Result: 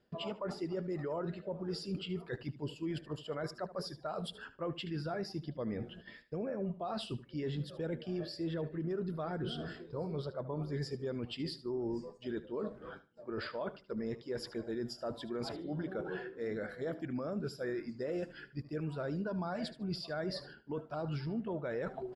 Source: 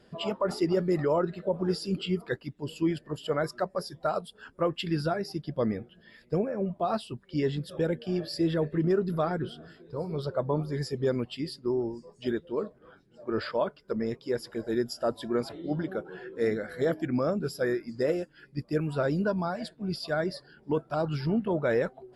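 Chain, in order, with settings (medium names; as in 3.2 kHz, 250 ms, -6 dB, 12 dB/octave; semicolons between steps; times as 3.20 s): gate -55 dBFS, range -19 dB; reverse; compression 10:1, threshold -40 dBFS, peak gain reduction 18.5 dB; reverse; peak limiter -36 dBFS, peak gain reduction 6.5 dB; distance through air 56 m; feedback delay 75 ms, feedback 21%, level -15.5 dB; trim +6.5 dB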